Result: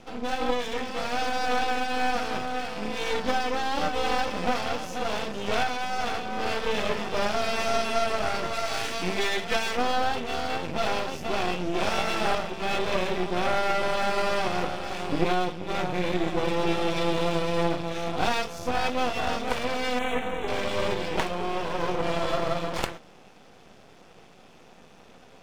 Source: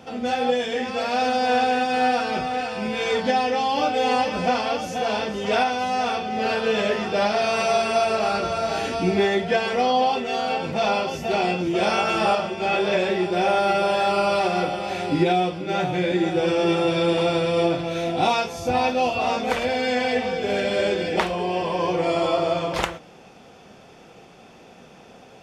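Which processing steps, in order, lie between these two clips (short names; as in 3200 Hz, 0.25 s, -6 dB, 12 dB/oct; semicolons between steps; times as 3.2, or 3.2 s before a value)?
8.53–9.77 tilt shelf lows -5.5 dB, about 800 Hz; half-wave rectifier; 19.99–20.48 Butterworth band-stop 4900 Hz, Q 1.6; gain -1 dB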